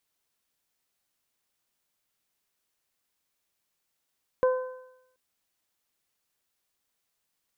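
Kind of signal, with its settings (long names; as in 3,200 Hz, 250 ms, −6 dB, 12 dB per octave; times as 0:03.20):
harmonic partials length 0.73 s, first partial 511 Hz, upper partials −10/−18 dB, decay 0.80 s, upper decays 0.83/0.96 s, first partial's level −17.5 dB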